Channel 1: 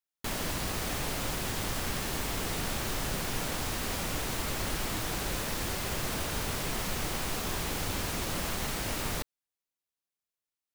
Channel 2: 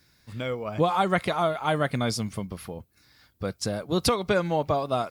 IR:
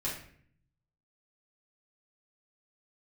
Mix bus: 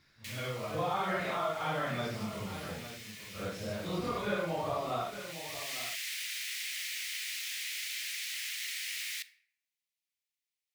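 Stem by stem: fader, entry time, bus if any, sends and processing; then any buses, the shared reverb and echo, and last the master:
-2.5 dB, 0.00 s, send -16.5 dB, no echo send, Chebyshev high-pass 2000 Hz, order 4; auto duck -19 dB, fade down 0.60 s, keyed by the second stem
-7.5 dB, 0.00 s, send -13 dB, echo send -13.5 dB, phase scrambler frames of 0.2 s; de-esser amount 95%; high shelf 8200 Hz -10.5 dB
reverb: on, RT60 0.55 s, pre-delay 5 ms
echo: echo 0.857 s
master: bell 2100 Hz +6.5 dB 2.6 oct; compressor 1.5:1, threshold -38 dBFS, peak gain reduction 6 dB

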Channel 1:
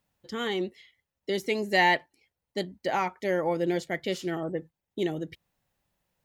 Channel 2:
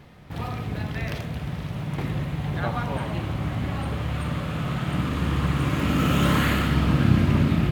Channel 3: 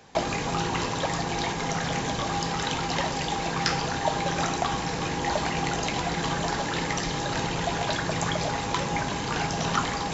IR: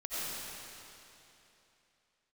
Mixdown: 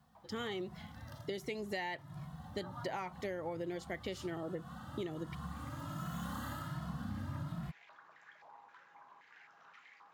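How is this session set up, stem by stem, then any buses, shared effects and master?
-3.5 dB, 0.00 s, no send, dry
-11.5 dB, 0.00 s, no send, HPF 140 Hz 6 dB/oct; fixed phaser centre 980 Hz, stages 4; endless flanger 2.3 ms +1.3 Hz
-20.0 dB, 0.00 s, no send, soft clip -20 dBFS, distortion -18 dB; stepped band-pass 3.8 Hz 970–2100 Hz; auto duck -11 dB, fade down 0.30 s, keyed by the first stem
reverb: off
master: compressor 16:1, threshold -36 dBFS, peak gain reduction 15.5 dB

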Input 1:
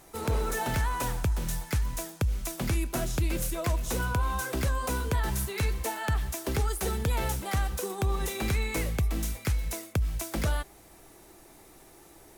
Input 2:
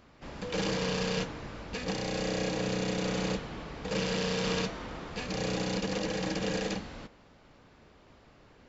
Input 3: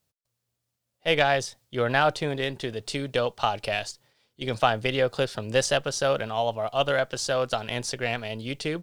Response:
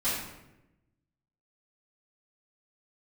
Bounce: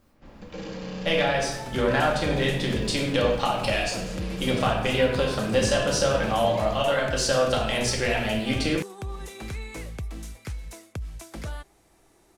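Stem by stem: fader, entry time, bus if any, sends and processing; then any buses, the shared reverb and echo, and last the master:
-18.5 dB, 1.00 s, no send, LPF 9800 Hz 12 dB/oct; AGC gain up to 12 dB
-9.0 dB, 0.00 s, send -12 dB, tilt -1.5 dB/oct
0.0 dB, 0.00 s, send -4 dB, compressor, threshold -26 dBFS, peak gain reduction 10.5 dB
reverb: on, RT60 0.95 s, pre-delay 4 ms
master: dry

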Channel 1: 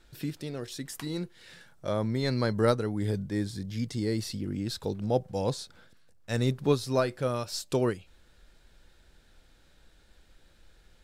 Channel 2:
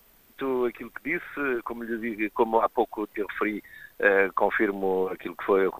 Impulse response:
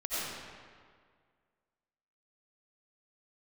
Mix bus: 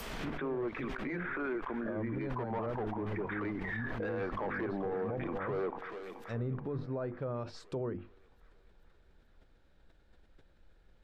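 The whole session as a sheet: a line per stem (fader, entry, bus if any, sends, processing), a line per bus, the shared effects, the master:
-4.0 dB, 0.00 s, no send, no echo send, LPF 1200 Hz 6 dB/oct; notches 50/100/150/200/250/300/350 Hz; sustainer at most 140 dB/s
-4.5 dB, 0.00 s, no send, echo send -15 dB, high shelf 8200 Hz -6.5 dB; hard clip -23 dBFS, distortion -7 dB; backwards sustainer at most 22 dB/s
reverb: off
echo: feedback echo 0.432 s, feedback 59%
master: treble ducked by the level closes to 1600 Hz, closed at -30 dBFS; limiter -29 dBFS, peak gain reduction 12.5 dB

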